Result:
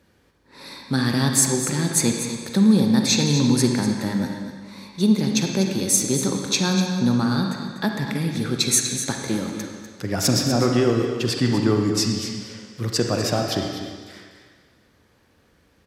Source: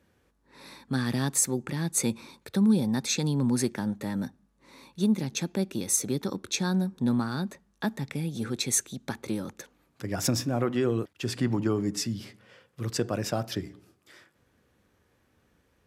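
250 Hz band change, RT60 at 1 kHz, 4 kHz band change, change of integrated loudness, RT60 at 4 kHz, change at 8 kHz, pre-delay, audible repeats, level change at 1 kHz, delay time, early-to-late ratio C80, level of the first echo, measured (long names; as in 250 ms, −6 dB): +7.5 dB, 1.7 s, +11.0 dB, +7.5 dB, 1.7 s, +7.5 dB, 37 ms, 1, +8.0 dB, 246 ms, 4.0 dB, −11.0 dB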